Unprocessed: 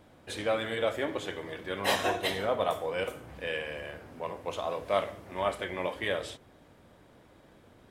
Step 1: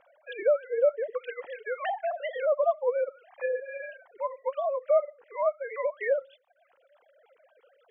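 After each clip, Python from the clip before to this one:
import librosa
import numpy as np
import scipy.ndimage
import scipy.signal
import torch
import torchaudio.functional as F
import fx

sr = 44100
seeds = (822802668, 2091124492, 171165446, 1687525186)

y = fx.sine_speech(x, sr)
y = fx.env_lowpass_down(y, sr, base_hz=920.0, full_db=-29.5)
y = fx.dereverb_blind(y, sr, rt60_s=0.75)
y = y * librosa.db_to_amplitude(5.0)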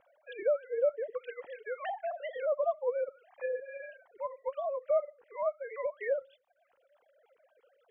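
y = fx.low_shelf(x, sr, hz=280.0, db=9.5)
y = y * librosa.db_to_amplitude(-7.0)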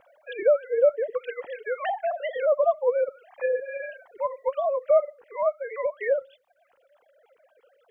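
y = fx.rider(x, sr, range_db=4, speed_s=2.0)
y = y * librosa.db_to_amplitude(7.5)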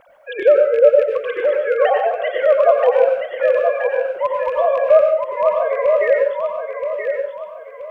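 y = fx.rattle_buzz(x, sr, strikes_db=-41.0, level_db=-31.0)
y = fx.echo_feedback(y, sr, ms=976, feedback_pct=34, wet_db=-6.0)
y = fx.rev_plate(y, sr, seeds[0], rt60_s=0.54, hf_ratio=0.8, predelay_ms=80, drr_db=2.5)
y = y * librosa.db_to_amplitude(7.5)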